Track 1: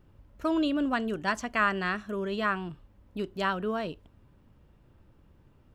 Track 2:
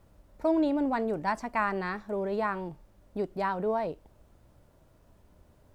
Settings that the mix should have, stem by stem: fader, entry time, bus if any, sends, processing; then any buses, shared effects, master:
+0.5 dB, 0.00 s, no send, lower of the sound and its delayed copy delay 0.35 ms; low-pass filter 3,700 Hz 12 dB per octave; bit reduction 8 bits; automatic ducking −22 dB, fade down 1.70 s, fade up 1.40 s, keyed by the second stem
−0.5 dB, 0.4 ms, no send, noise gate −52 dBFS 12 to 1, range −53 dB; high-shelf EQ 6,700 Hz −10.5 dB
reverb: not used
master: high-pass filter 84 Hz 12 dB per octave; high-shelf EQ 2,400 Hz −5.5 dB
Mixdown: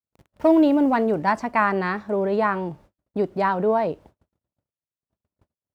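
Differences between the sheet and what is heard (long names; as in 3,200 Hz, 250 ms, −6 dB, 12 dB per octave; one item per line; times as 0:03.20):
stem 2 −0.5 dB → +8.5 dB
master: missing high-shelf EQ 2,400 Hz −5.5 dB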